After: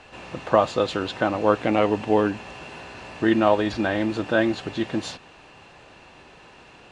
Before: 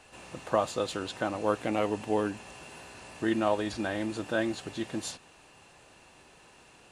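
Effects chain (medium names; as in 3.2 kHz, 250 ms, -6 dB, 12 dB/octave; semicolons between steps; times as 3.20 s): low-pass 4.2 kHz 12 dB/octave; trim +8.5 dB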